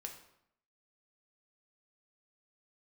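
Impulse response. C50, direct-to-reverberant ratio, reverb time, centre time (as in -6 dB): 8.0 dB, 2.5 dB, 0.75 s, 20 ms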